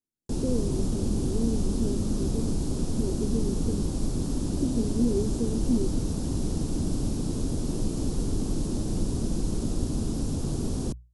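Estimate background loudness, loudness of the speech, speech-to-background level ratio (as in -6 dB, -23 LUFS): -30.0 LUFS, -32.0 LUFS, -2.0 dB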